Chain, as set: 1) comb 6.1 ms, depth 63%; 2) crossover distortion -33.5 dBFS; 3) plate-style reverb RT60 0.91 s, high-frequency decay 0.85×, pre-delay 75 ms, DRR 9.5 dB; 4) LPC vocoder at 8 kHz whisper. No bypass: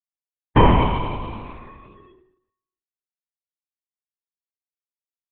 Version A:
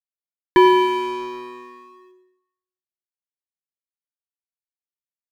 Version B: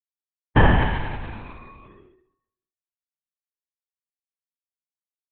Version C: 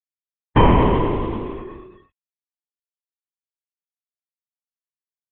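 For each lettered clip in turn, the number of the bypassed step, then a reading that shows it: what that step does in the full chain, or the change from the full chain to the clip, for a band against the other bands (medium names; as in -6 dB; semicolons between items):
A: 4, 500 Hz band +3.5 dB; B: 1, 2 kHz band +9.5 dB; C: 3, 500 Hz band +2.5 dB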